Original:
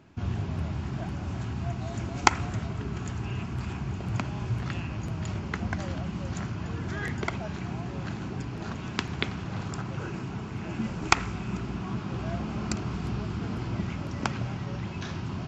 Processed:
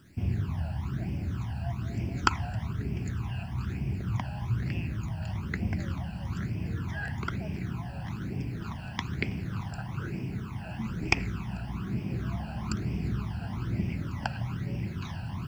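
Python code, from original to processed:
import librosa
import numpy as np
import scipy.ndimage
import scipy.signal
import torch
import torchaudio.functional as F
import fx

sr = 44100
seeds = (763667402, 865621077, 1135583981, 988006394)

y = fx.high_shelf(x, sr, hz=7100.0, db=-9.5)
y = fx.quant_dither(y, sr, seeds[0], bits=10, dither='none')
y = fx.phaser_stages(y, sr, stages=12, low_hz=360.0, high_hz=1300.0, hz=1.1, feedback_pct=35)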